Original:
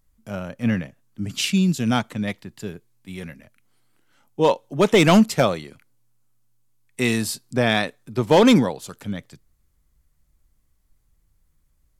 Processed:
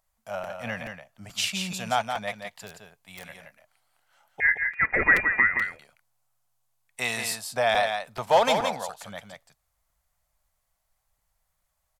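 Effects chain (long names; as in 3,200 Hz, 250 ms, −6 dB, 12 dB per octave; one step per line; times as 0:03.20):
low shelf with overshoot 480 Hz −12.5 dB, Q 3
in parallel at −3 dB: downward compressor, threshold −23 dBFS, peak gain reduction 14 dB
0:04.40–0:05.62: on the sum: voice inversion scrambler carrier 2,600 Hz
on a send: single-tap delay 171 ms −6 dB
0:02.66–0:03.25: on the sum: wrap-around overflow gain 24 dB
regular buffer underruns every 0.43 s, samples 256, repeat, from 0:00.43
level −7 dB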